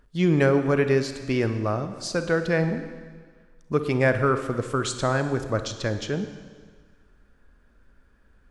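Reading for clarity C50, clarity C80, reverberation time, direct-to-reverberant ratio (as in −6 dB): 9.5 dB, 11.0 dB, 1.6 s, 8.5 dB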